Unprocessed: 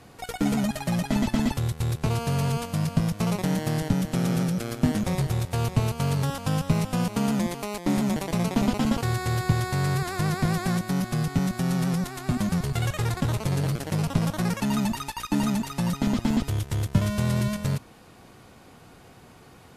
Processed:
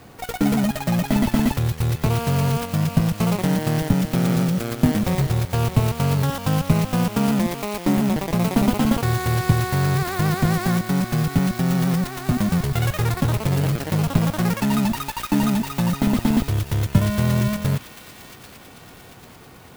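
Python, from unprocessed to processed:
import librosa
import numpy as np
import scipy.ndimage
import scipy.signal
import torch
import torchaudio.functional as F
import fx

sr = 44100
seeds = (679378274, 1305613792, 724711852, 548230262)

p1 = fx.backlash(x, sr, play_db=-32.0, at=(7.91, 8.4))
p2 = p1 + fx.echo_wet_highpass(p1, sr, ms=791, feedback_pct=52, hz=1900.0, wet_db=-9.5, dry=0)
p3 = fx.clock_jitter(p2, sr, seeds[0], jitter_ms=0.034)
y = p3 * 10.0 ** (5.0 / 20.0)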